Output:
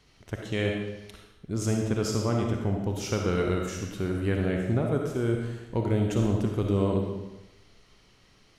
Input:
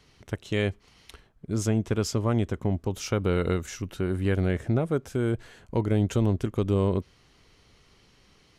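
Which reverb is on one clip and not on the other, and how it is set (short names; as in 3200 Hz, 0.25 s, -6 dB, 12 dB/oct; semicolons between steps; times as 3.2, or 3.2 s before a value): digital reverb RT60 0.97 s, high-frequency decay 0.95×, pre-delay 15 ms, DRR 1 dB; gain -2.5 dB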